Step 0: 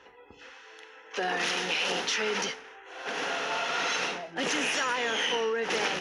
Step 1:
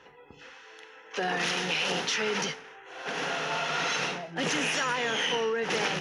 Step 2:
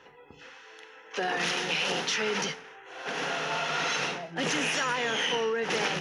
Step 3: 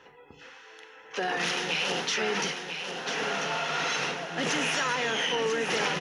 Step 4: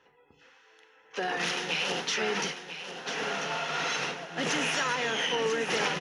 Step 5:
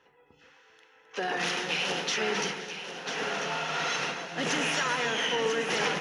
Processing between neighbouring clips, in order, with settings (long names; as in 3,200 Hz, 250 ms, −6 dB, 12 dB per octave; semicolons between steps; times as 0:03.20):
parametric band 150 Hz +13.5 dB 0.47 octaves
mains-hum notches 60/120/180 Hz
single-tap delay 993 ms −7 dB
expander for the loud parts 1.5 to 1, over −45 dBFS
delay that swaps between a low-pass and a high-pass 131 ms, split 2,200 Hz, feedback 63%, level −8 dB